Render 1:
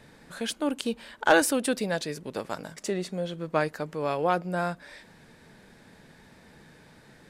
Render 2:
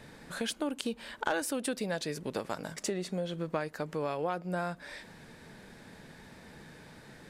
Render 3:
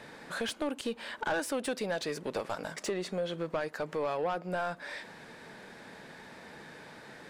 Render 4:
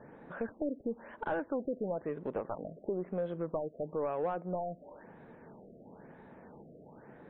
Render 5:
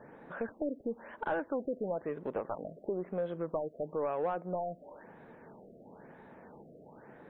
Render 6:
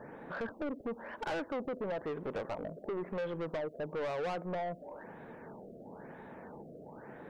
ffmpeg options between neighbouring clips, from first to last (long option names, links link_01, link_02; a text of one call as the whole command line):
ffmpeg -i in.wav -af "acompressor=threshold=-33dB:ratio=4,volume=2dB" out.wav
ffmpeg -i in.wav -filter_complex "[0:a]asplit=2[link_01][link_02];[link_02]highpass=frequency=720:poles=1,volume=21dB,asoftclip=type=tanh:threshold=-13.5dB[link_03];[link_01][link_03]amix=inputs=2:normalize=0,lowpass=frequency=1000:poles=1,volume=-6dB,highshelf=frequency=3300:gain=9,volume=-6dB" out.wav
ffmpeg -i in.wav -af "adynamicsmooth=sensitivity=0.5:basefreq=1000,afftfilt=real='re*lt(b*sr/1024,700*pow(4200/700,0.5+0.5*sin(2*PI*1*pts/sr)))':imag='im*lt(b*sr/1024,700*pow(4200/700,0.5+0.5*sin(2*PI*1*pts/sr)))':win_size=1024:overlap=0.75" out.wav
ffmpeg -i in.wav -af "lowshelf=frequency=320:gain=-5,volume=2dB" out.wav
ffmpeg -i in.wav -af "asoftclip=type=tanh:threshold=-37.5dB,volume=4.5dB" out.wav